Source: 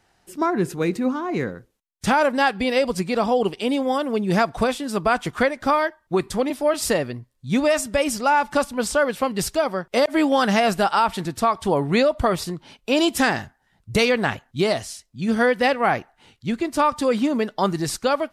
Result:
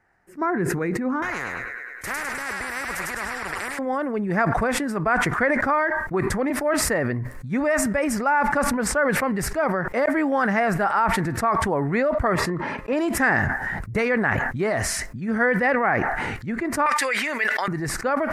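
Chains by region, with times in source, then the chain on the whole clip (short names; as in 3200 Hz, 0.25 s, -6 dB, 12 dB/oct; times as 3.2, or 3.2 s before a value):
1.22–3.79 thin delay 0.103 s, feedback 43%, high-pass 1900 Hz, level -5 dB + spectral compressor 10:1
12.35–12.93 tone controls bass +3 dB, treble +2 dB + notch comb 750 Hz + overdrive pedal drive 15 dB, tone 1100 Hz, clips at -7 dBFS
16.86–17.68 HPF 750 Hz + resonant high shelf 1600 Hz +10.5 dB, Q 1.5 + fast leveller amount 50%
whole clip: resonant high shelf 2500 Hz -10 dB, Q 3; sustainer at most 22 dB/s; gain -4.5 dB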